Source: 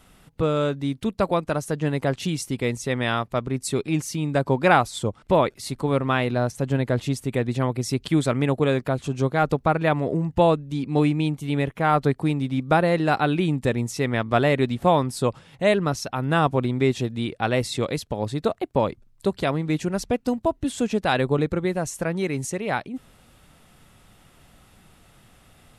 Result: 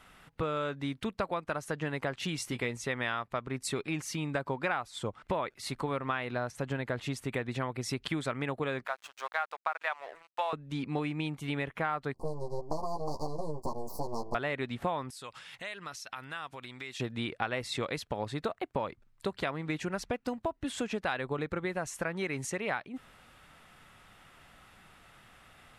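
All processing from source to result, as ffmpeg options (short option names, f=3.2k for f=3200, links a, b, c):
-filter_complex "[0:a]asettb=1/sr,asplit=3[a][b][c];[a]atrim=end=2.384[d];[b]atrim=start=2.38:end=2.84,asetpts=PTS-STARTPTS,afade=t=in:d=0.004:c=qsin,afade=t=out:st=0.456:d=0.004:c=qsin,bandreject=f=50:t=h:w=6,bandreject=f=100:t=h:w=6,bandreject=f=150:t=h:w=6,asplit=2[e][f];[f]adelay=17,volume=-9.5dB[g];[e][g]amix=inputs=2:normalize=0,atrim=end_sample=20286,acompressor=mode=upward:threshold=-31dB:ratio=2.5:attack=3.2:release=140:knee=2.83:detection=peak[h];[c]atrim=start=2.836[i];[d][h]acrossfade=d=0.004:c1=hsin:c2=qsin[j];[j][i]acrossfade=d=0.004:c1=qsin:c2=hsin,asettb=1/sr,asplit=3[k][l][m];[k]atrim=end=8.864[n];[l]atrim=start=8.86:end=10.53,asetpts=PTS-STARTPTS,afade=t=in:d=0.004:c=qsin,afade=t=out:st=1.666:d=0.004:c=qsin,highpass=f=690:w=0.5412,highpass=f=690:w=1.3066,aeval=exprs='sgn(val(0))*max(abs(val(0))-0.00668,0)':c=same[o];[m]atrim=start=10.526[p];[n][o]acrossfade=d=0.004:c1=hsin:c2=qsin[q];[q][p]acrossfade=d=0.004:c1=qsin:c2=hsin,asettb=1/sr,asplit=3[r][s][t];[r]atrim=end=12.144[u];[s]atrim=start=12.14:end=14.35,asetpts=PTS-STARTPTS,afade=t=in:d=0.004:c=qsin,afade=t=out:st=2.206:d=0.004:c=qsin,aeval=exprs='abs(val(0))':c=same,asuperstop=centerf=2200:order=20:qfactor=0.66,asplit=2[v][w];[w]adelay=13,volume=-3.5dB[x];[v][x]amix=inputs=2:normalize=0,atrim=end_sample=97461[y];[t]atrim=start=14.346[z];[u][y]acrossfade=d=0.004:c1=hsin:c2=qsin[aa];[aa][z]acrossfade=d=0.004:c1=qsin:c2=hsin,asettb=1/sr,asplit=3[ab][ac][ad];[ab]atrim=end=15.104[ae];[ac]atrim=start=15.1:end=17,asetpts=PTS-STARTPTS,afade=t=in:d=0.004:c=qsin,afade=t=out:st=1.896:d=0.004:c=qsin,tiltshelf=f=1.4k:g=-9.5,acompressor=threshold=-37dB:ratio=6:attack=3.2:release=140:knee=1:detection=peak[af];[ad]atrim=start=16.996[ag];[ae][af]acrossfade=d=0.004:c1=hsin:c2=qsin[ah];[ah][ag]acrossfade=d=0.004:c1=qsin:c2=hsin,equalizer=f=1.6k:w=0.49:g=11.5,acompressor=threshold=-21dB:ratio=6,volume=-8.5dB"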